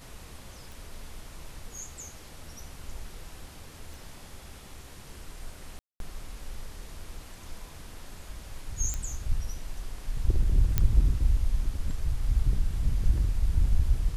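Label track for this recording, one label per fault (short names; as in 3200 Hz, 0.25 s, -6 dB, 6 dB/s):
0.720000	0.720000	pop
3.940000	3.940000	pop
5.790000	6.000000	gap 0.212 s
8.940000	8.940000	pop -18 dBFS
10.780000	10.780000	pop -10 dBFS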